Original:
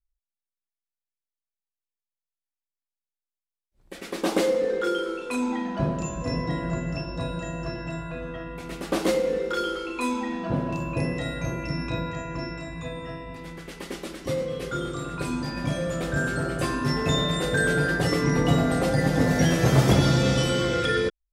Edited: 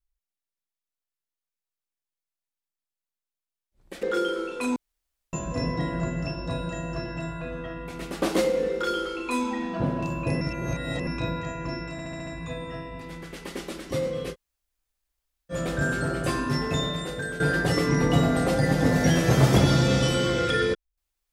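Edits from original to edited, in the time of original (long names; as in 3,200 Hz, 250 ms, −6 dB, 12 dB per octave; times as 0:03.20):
0:04.03–0:04.73: remove
0:05.46–0:06.03: fill with room tone
0:11.11–0:11.77: reverse
0:12.62: stutter 0.07 s, 6 plays
0:14.68–0:15.87: fill with room tone, crossfade 0.06 s
0:16.72–0:17.75: fade out, to −12.5 dB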